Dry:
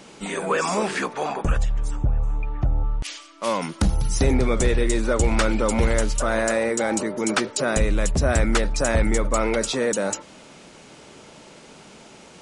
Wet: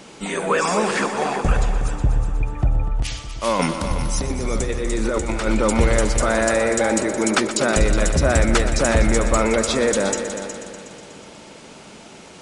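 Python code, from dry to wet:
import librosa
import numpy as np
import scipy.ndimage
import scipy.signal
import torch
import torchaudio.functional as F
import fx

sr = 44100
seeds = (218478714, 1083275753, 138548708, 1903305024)

y = fx.over_compress(x, sr, threshold_db=-25.0, ratio=-1.0, at=(3.59, 5.47))
y = fx.echo_heads(y, sr, ms=122, heads='all three', feedback_pct=49, wet_db=-13.0)
y = F.gain(torch.from_numpy(y), 3.0).numpy()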